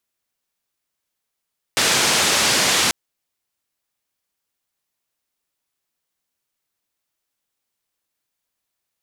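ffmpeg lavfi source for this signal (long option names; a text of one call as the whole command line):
ffmpeg -f lavfi -i "anoisesrc=color=white:duration=1.14:sample_rate=44100:seed=1,highpass=frequency=110,lowpass=frequency=6700,volume=-7.7dB" out.wav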